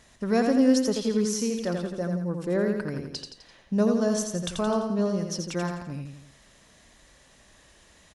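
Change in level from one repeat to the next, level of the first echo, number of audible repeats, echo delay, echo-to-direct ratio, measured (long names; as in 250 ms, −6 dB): −6.0 dB, −5.0 dB, 4, 85 ms, −4.0 dB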